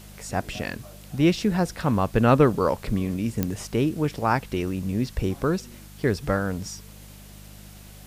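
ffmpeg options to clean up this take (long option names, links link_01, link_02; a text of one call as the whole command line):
ffmpeg -i in.wav -af "adeclick=threshold=4,bandreject=frequency=50.7:width_type=h:width=4,bandreject=frequency=101.4:width_type=h:width=4,bandreject=frequency=152.1:width_type=h:width=4,bandreject=frequency=202.8:width_type=h:width=4,afwtdn=0.0032" out.wav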